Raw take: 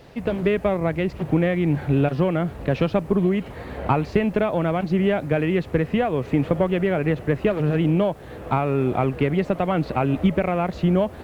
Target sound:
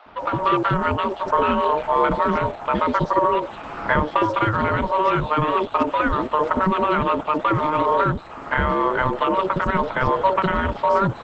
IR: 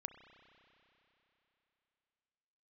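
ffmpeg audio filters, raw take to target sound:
-filter_complex "[0:a]aeval=exprs='val(0)*sin(2*PI*760*n/s)':c=same,acrossover=split=530|3900[a][b][c];[a]adelay=60[d];[c]adelay=180[e];[d][b][e]amix=inputs=3:normalize=0,volume=6dB" -ar 48000 -c:a libopus -b:a 12k

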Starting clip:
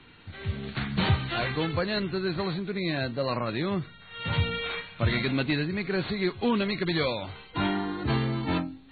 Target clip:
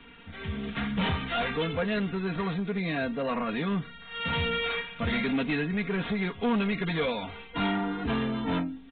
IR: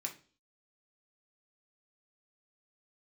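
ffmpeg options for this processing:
-af "aecho=1:1:4.3:0.79,aresample=8000,asoftclip=type=tanh:threshold=-22dB,aresample=44100"

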